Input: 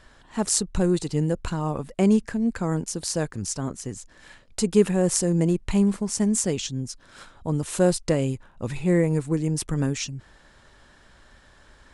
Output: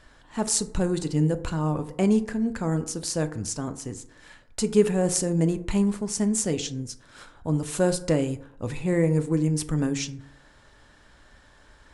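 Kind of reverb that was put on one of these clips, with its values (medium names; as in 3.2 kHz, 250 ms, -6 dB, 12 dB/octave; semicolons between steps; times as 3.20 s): FDN reverb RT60 0.71 s, low-frequency decay 0.9×, high-frequency decay 0.4×, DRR 9 dB; trim -1.5 dB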